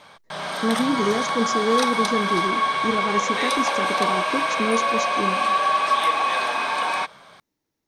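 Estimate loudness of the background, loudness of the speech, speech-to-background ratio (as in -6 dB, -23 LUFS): -22.0 LUFS, -26.5 LUFS, -4.5 dB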